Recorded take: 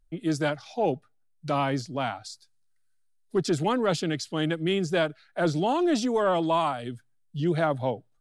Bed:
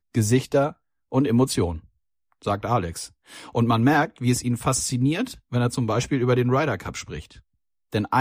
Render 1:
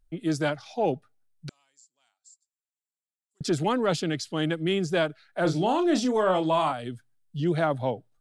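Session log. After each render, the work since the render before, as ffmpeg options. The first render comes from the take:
-filter_complex "[0:a]asettb=1/sr,asplit=3[s0][s1][s2];[s0]atrim=end=1.494[s3];[s1]atrim=start=1.49:end=3.41,asetpts=PTS-STARTPTS,afade=t=in:d=0.004:c=qsin,afade=t=out:st=1.916:d=0.004:c=qsin,bandpass=f=7400:t=q:w=18[s4];[s2]atrim=start=3.406[s5];[s3][s4]acrossfade=d=0.004:c1=hsin:c2=qsin[s6];[s6][s5]acrossfade=d=0.004:c1=qsin:c2=hsin,asettb=1/sr,asplit=3[s7][s8][s9];[s7]atrim=end=5.424[s10];[s8]atrim=start=5.42:end=6.72,asetpts=PTS-STARTPTS,afade=t=in:d=0.004:c=qsin,afade=t=out:st=1.296:d=0.004:c=qsin,asplit=2[s11][s12];[s12]adelay=32,volume=0.398[s13];[s11][s13]amix=inputs=2:normalize=0,atrim=end_sample=57330[s14];[s9]atrim=start=6.716[s15];[s10][s14]acrossfade=d=0.004:c1=hsin:c2=qsin[s16];[s16][s15]acrossfade=d=0.004:c1=qsin:c2=hsin"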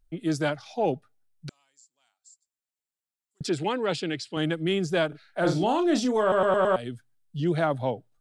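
-filter_complex "[0:a]asettb=1/sr,asplit=3[s0][s1][s2];[s0]atrim=end=3.474[s3];[s1]atrim=start=3.47:end=4.37,asetpts=PTS-STARTPTS,afade=t=in:d=0.004:c=qsin,afade=t=out:st=0.896:d=0.004:c=qsin,highpass=110,equalizer=f=160:t=q:w=4:g=-5,equalizer=f=240:t=q:w=4:g=-6,equalizer=f=650:t=q:w=4:g=-5,equalizer=f=1200:t=q:w=4:g=-5,equalizer=f=2500:t=q:w=4:g=4,equalizer=f=6300:t=q:w=4:g=-8,lowpass=f=8700:w=0.5412,lowpass=f=8700:w=1.3066[s4];[s2]atrim=start=4.366[s5];[s3][s4]acrossfade=d=0.004:c1=hsin:c2=qsin[s6];[s6][s5]acrossfade=d=0.004:c1=qsin:c2=hsin,asettb=1/sr,asplit=3[s7][s8][s9];[s7]atrim=end=5.074[s10];[s8]atrim=start=5.07:end=5.64,asetpts=PTS-STARTPTS,afade=t=in:d=0.004:c=qsin,afade=t=out:st=0.566:d=0.004:c=qsin,asplit=2[s11][s12];[s12]adelay=49,volume=0.447[s13];[s11][s13]amix=inputs=2:normalize=0,atrim=end_sample=25137[s14];[s9]atrim=start=5.636[s15];[s10][s14]acrossfade=d=0.004:c1=hsin:c2=qsin[s16];[s16][s15]acrossfade=d=0.004:c1=qsin:c2=hsin,asplit=6[s17][s18][s19][s20][s21][s22];[s17]atrim=end=6.322[s23];[s18]atrim=start=6.208:end=6.322[s24];[s19]atrim=start=6.208:end=6.322[s25];[s20]atrim=start=6.208:end=6.322[s26];[s21]atrim=start=6.208:end=6.322[s27];[s22]atrim=start=6.758[s28];[s23][s24]acrossfade=d=0.004:c1=hsin:c2=hsin[s29];[s29][s25]acrossfade=d=0.004:c1=hsin:c2=hsin[s30];[s30][s26]acrossfade=d=0.004:c1=hsin:c2=hsin[s31];[s31][s27]acrossfade=d=0.004:c1=hsin:c2=hsin[s32];[s32][s28]acrossfade=d=0.004:c1=hsin:c2=hsin"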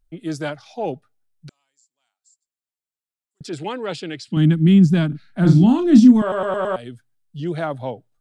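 -filter_complex "[0:a]asettb=1/sr,asplit=3[s0][s1][s2];[s0]atrim=end=4.284[s3];[s1]atrim=start=4.28:end=6.22,asetpts=PTS-STARTPTS,afade=t=in:d=0.004:c=qsin,afade=t=out:st=1.936:d=0.004:c=qsin,lowshelf=f=330:t=q:w=3:g=13[s4];[s2]atrim=start=6.216[s5];[s3][s4]acrossfade=d=0.004:c1=hsin:c2=qsin[s6];[s6][s5]acrossfade=d=0.004:c1=qsin:c2=hsin,asplit=3[s7][s8][s9];[s7]atrim=end=1.482[s10];[s8]atrim=start=1.478:end=3.532,asetpts=PTS-STARTPTS,volume=0.668[s11];[s9]atrim=start=3.528[s12];[s10][s11]acrossfade=d=0.004:c1=hsin:c2=hsin[s13];[s13][s12]acrossfade=d=0.004:c1=hsin:c2=hsin"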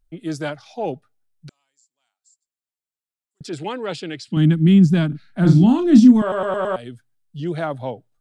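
-af anull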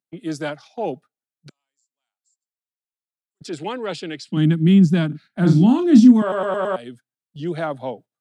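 -af "highpass=f=150:w=0.5412,highpass=f=150:w=1.3066,agate=range=0.316:threshold=0.00794:ratio=16:detection=peak"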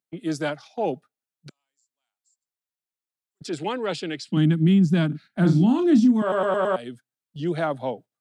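-af "acompressor=threshold=0.178:ratio=4"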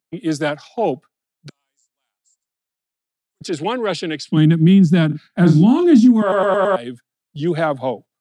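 -af "volume=2.11"

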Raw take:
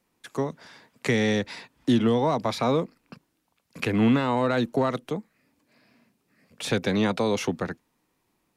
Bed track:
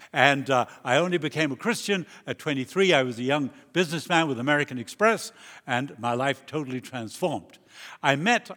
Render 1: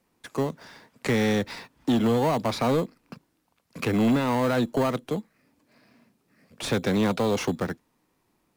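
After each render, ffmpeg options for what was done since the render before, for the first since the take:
-filter_complex "[0:a]asplit=2[s0][s1];[s1]acrusher=samples=12:mix=1:aa=0.000001,volume=0.398[s2];[s0][s2]amix=inputs=2:normalize=0,asoftclip=type=tanh:threshold=0.141"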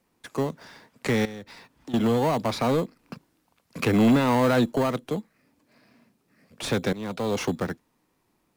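-filter_complex "[0:a]asettb=1/sr,asplit=3[s0][s1][s2];[s0]atrim=end=1.254[s3];[s1]atrim=start=1.25:end=1.94,asetpts=PTS-STARTPTS,afade=t=in:d=0.004:c=qsin,afade=t=out:st=0.686:d=0.004:c=qsin,acompressor=threshold=0.00355:ratio=2:attack=3.2:release=140:knee=1:detection=peak[s4];[s2]atrim=start=1.936[s5];[s3][s4]acrossfade=d=0.004:c1=hsin:c2=qsin[s6];[s6][s5]acrossfade=d=0.004:c1=qsin:c2=hsin,asplit=4[s7][s8][s9][s10];[s7]atrim=end=2.992[s11];[s8]atrim=start=2.988:end=4.722,asetpts=PTS-STARTPTS,volume=1.41[s12];[s9]atrim=start=4.718:end=6.93,asetpts=PTS-STARTPTS,afade=t=out:st=2.208:d=0.004:c=hsin:silence=0.112202[s13];[s10]atrim=start=6.93,asetpts=PTS-STARTPTS,afade=t=in:d=0.49:silence=0.112202[s14];[s11][s12]acrossfade=d=0.004:c1=hsin:c2=hsin[s15];[s13][s14]concat=n=2:v=0:a=1[s16];[s15][s16]acrossfade=d=0.004:c1=hsin:c2=hsin"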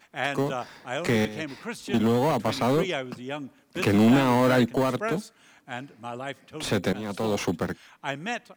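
-filter_complex "[1:a]volume=0.335[s0];[0:a][s0]amix=inputs=2:normalize=0"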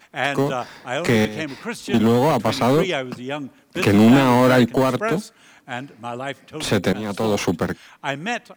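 -af "volume=2"

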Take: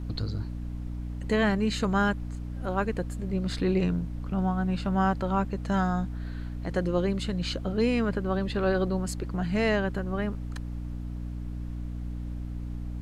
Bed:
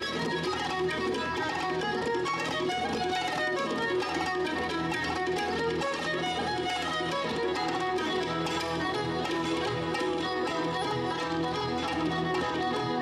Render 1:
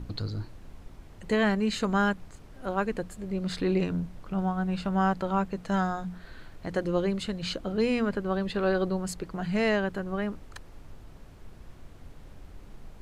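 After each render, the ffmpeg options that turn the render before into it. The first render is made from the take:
-af "bandreject=f=60:t=h:w=6,bandreject=f=120:t=h:w=6,bandreject=f=180:t=h:w=6,bandreject=f=240:t=h:w=6,bandreject=f=300:t=h:w=6"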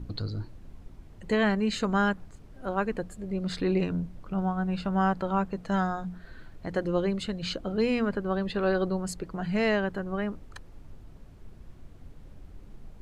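-af "afftdn=nr=6:nf=-50"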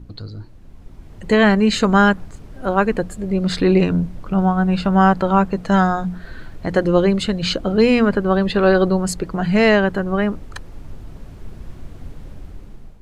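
-af "dynaudnorm=f=390:g=5:m=4.73"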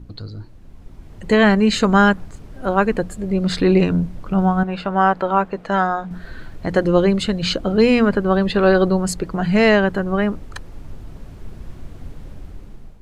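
-filter_complex "[0:a]asettb=1/sr,asplit=3[s0][s1][s2];[s0]atrim=end=4.634[s3];[s1]atrim=start=4.63:end=6.11,asetpts=PTS-STARTPTS,afade=t=in:d=0.004:c=qsin,afade=t=out:st=1.476:d=0.004:c=qsin,bass=f=250:g=-12,treble=f=4000:g=-10[s4];[s2]atrim=start=6.106[s5];[s3][s4]acrossfade=d=0.004:c1=hsin:c2=qsin[s6];[s6][s5]acrossfade=d=0.004:c1=qsin:c2=hsin"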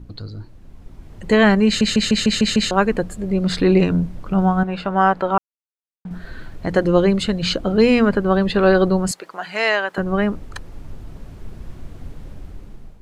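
-filter_complex "[0:a]asettb=1/sr,asplit=3[s0][s1][s2];[s0]atrim=end=9.114[s3];[s1]atrim=start=9.11:end=9.98,asetpts=PTS-STARTPTS,afade=t=in:d=0.004:c=qsin,afade=t=out:st=0.866:d=0.004:c=qsin,highpass=740[s4];[s2]atrim=start=9.976[s5];[s3][s4]acrossfade=d=0.004:c1=hsin:c2=qsin[s6];[s6][s5]acrossfade=d=0.004:c1=qsin:c2=hsin,asplit=10[s7][s8][s9][s10][s11][s12][s13][s14][s15][s16];[s7]atrim=end=1.812[s17];[s8]atrim=start=1.658:end=1.812[s18];[s9]atrim=start=1.658:end=1.812[s19];[s10]atrim=start=1.658:end=1.812[s20];[s11]atrim=start=1.658:end=1.812[s21];[s12]atrim=start=1.658:end=1.812[s22];[s13]atrim=start=1.658:end=1.812[s23];[s14]atrim=start=2.708:end=5.38,asetpts=PTS-STARTPTS,afade=t=out:st=2.668:d=0.004:c=hsin[s24];[s15]atrim=start=5.38:end=6.05,asetpts=PTS-STARTPTS,volume=0[s25];[s16]atrim=start=6.05,asetpts=PTS-STARTPTS,afade=t=in:d=0.004:c=hsin[s26];[s17][s18]acrossfade=d=0.004:c1=hsin:c2=hsin[s27];[s27][s19]acrossfade=d=0.004:c1=hsin:c2=hsin[s28];[s28][s20]acrossfade=d=0.004:c1=hsin:c2=hsin[s29];[s29][s21]acrossfade=d=0.004:c1=hsin:c2=hsin[s30];[s30][s22]acrossfade=d=0.004:c1=hsin:c2=hsin[s31];[s31][s23]acrossfade=d=0.004:c1=hsin:c2=hsin[s32];[s24][s25][s26]concat=n=3:v=0:a=1[s33];[s32][s33]acrossfade=d=0.004:c1=hsin:c2=hsin"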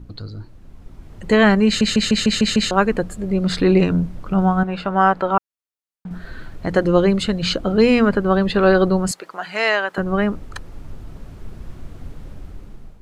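-af "equalizer=f=1300:t=o:w=0.28:g=2.5"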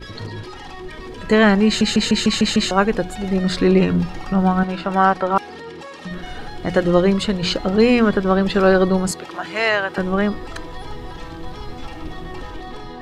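-filter_complex "[1:a]volume=0.531[s0];[0:a][s0]amix=inputs=2:normalize=0"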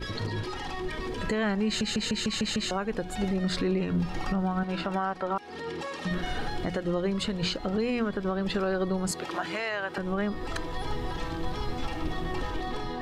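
-af "acompressor=threshold=0.0794:ratio=2.5,alimiter=limit=0.112:level=0:latency=1:release=357"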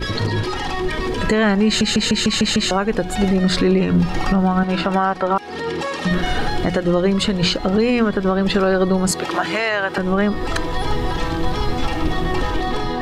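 -af "volume=3.76"

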